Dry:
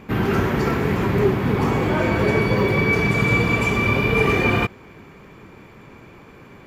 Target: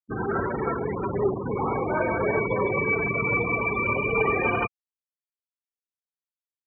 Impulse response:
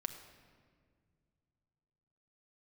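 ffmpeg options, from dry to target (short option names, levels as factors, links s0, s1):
-filter_complex "[0:a]afftfilt=real='re*gte(hypot(re,im),0.126)':imag='im*gte(hypot(re,im),0.126)':win_size=1024:overlap=0.75,acrossover=split=430 2400:gain=0.251 1 0.178[s0][s1][s2];[s0][s1][s2]amix=inputs=3:normalize=0"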